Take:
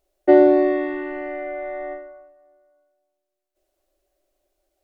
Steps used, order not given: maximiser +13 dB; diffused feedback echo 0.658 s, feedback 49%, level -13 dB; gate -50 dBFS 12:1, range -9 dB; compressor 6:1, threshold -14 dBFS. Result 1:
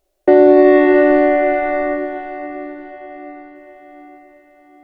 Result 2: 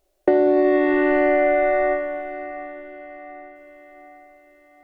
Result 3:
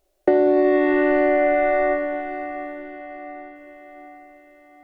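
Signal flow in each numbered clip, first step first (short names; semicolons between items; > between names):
gate > diffused feedback echo > compressor > maximiser; gate > maximiser > compressor > diffused feedback echo; maximiser > gate > diffused feedback echo > compressor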